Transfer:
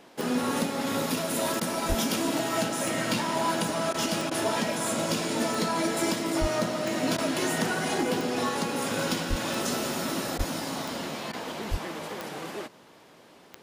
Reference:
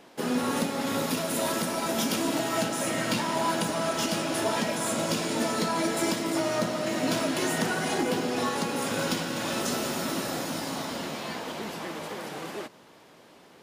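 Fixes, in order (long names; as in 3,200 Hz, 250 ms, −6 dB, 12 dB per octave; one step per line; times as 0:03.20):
click removal
high-pass at the plosives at 0:01.88/0:06.40/0:09.29/0:10.37/0:11.70
repair the gap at 0:01.60/0:03.93/0:04.30/0:07.17/0:10.38/0:11.32, 11 ms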